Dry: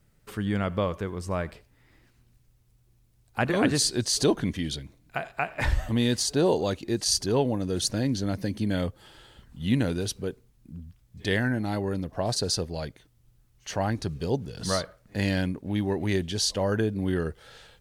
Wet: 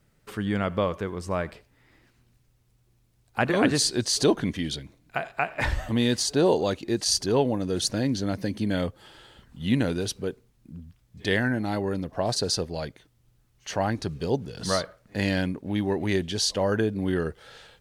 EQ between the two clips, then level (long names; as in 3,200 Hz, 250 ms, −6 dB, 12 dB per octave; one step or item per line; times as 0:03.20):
low-shelf EQ 120 Hz −7 dB
high-shelf EQ 7,300 Hz −5 dB
+2.5 dB